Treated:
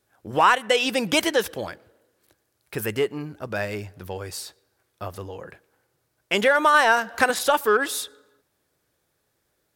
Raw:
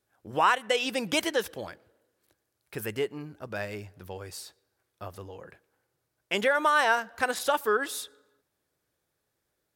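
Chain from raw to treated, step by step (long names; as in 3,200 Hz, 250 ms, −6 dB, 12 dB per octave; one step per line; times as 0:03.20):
in parallel at −9 dB: soft clipping −26.5 dBFS, distortion −7 dB
0:06.74–0:07.30: on the sum: multiband upward and downward compressor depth 70%
level +4.5 dB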